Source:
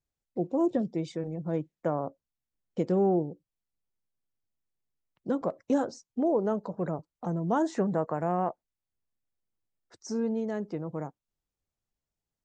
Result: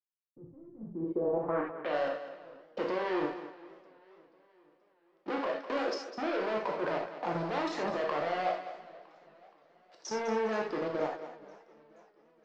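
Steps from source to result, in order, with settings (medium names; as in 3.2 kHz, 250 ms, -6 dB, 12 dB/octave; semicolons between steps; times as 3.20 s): waveshaping leveller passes 5; three-band isolator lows -23 dB, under 320 Hz, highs -17 dB, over 2.8 kHz; level held to a coarse grid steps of 14 dB; treble shelf 4.9 kHz +7 dB; gated-style reverb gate 110 ms flat, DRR -0.5 dB; low-pass sweep 110 Hz -> 4.8 kHz, 0.75–1.96 s; thinning echo 204 ms, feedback 25%, high-pass 190 Hz, level -11.5 dB; modulated delay 478 ms, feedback 54%, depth 179 cents, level -22 dB; trim -7 dB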